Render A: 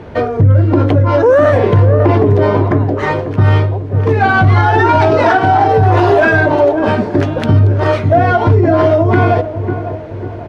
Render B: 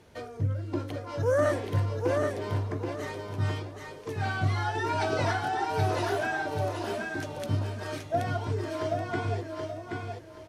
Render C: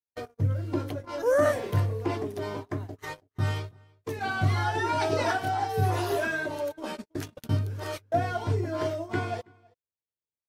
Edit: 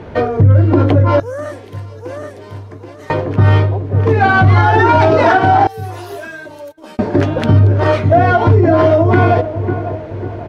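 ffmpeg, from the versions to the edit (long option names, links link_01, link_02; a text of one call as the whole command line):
ffmpeg -i take0.wav -i take1.wav -i take2.wav -filter_complex "[0:a]asplit=3[link_01][link_02][link_03];[link_01]atrim=end=1.202[link_04];[1:a]atrim=start=1.198:end=3.102[link_05];[link_02]atrim=start=3.098:end=5.672[link_06];[2:a]atrim=start=5.668:end=6.992[link_07];[link_03]atrim=start=6.988[link_08];[link_04][link_05]acrossfade=duration=0.004:curve1=hsin:curve2=hsin[link_09];[link_09][link_06]acrossfade=duration=0.004:curve1=hsin:curve2=hsin[link_10];[link_10][link_07]acrossfade=duration=0.004:curve1=hsin:curve2=hsin[link_11];[link_11][link_08]acrossfade=duration=0.004:curve1=hsin:curve2=hsin" out.wav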